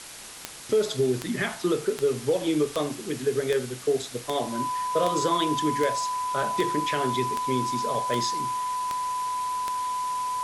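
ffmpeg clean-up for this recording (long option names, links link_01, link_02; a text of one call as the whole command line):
ffmpeg -i in.wav -af "adeclick=threshold=4,bandreject=frequency=1000:width=30,afftdn=noise_reduction=30:noise_floor=-39" out.wav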